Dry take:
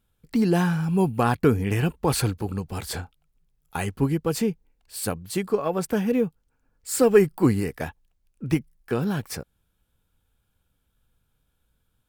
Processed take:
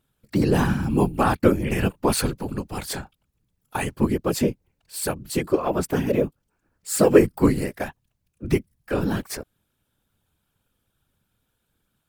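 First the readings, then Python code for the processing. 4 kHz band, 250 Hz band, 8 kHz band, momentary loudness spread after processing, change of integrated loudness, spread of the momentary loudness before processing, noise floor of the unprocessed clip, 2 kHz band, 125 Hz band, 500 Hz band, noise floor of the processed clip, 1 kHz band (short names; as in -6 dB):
+2.0 dB, +1.0 dB, +2.0 dB, 14 LU, +1.0 dB, 15 LU, -73 dBFS, +2.0 dB, -0.5 dB, +1.5 dB, -76 dBFS, +2.0 dB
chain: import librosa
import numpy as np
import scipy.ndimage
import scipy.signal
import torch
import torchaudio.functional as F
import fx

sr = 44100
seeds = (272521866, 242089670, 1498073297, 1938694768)

y = fx.low_shelf(x, sr, hz=78.0, db=-9.0)
y = fx.whisperise(y, sr, seeds[0])
y = y * librosa.db_to_amplitude(2.0)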